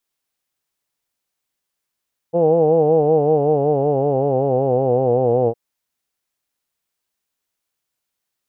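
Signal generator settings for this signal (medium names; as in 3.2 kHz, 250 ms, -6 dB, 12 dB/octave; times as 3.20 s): formant vowel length 3.21 s, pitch 165 Hz, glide -5.5 st, F1 480 Hz, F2 780 Hz, F3 2.8 kHz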